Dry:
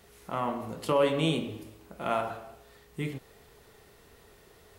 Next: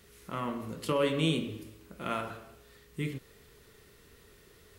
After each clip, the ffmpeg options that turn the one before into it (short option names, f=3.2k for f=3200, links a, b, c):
-af "equalizer=f=760:w=2:g=-12"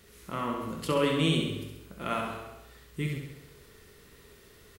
-af "aecho=1:1:67|134|201|268|335|402|469|536:0.562|0.321|0.183|0.104|0.0594|0.0338|0.0193|0.011,volume=1.5dB"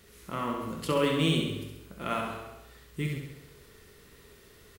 -af "acrusher=bits=8:mode=log:mix=0:aa=0.000001"